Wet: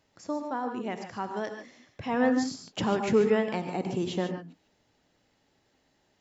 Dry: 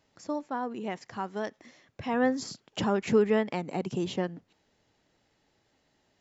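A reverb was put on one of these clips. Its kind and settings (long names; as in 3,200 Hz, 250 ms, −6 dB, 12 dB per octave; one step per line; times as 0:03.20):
reverb whose tail is shaped and stops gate 170 ms rising, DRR 6 dB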